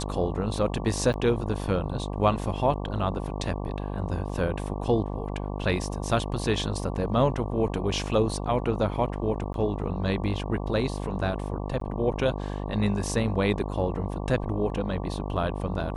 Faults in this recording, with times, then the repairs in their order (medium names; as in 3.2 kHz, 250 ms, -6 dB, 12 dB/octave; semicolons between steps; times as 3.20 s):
buzz 50 Hz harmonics 23 -32 dBFS
1.13–1.14 s: dropout 9.5 ms
4.29 s: dropout 4.7 ms
9.53–9.54 s: dropout 12 ms
11.80–11.81 s: dropout 13 ms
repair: de-hum 50 Hz, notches 23; interpolate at 1.13 s, 9.5 ms; interpolate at 4.29 s, 4.7 ms; interpolate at 9.53 s, 12 ms; interpolate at 11.80 s, 13 ms